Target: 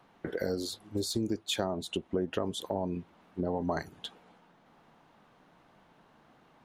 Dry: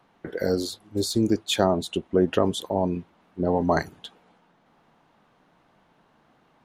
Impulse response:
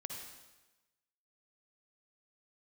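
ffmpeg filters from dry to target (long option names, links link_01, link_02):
-af "acompressor=threshold=-31dB:ratio=3"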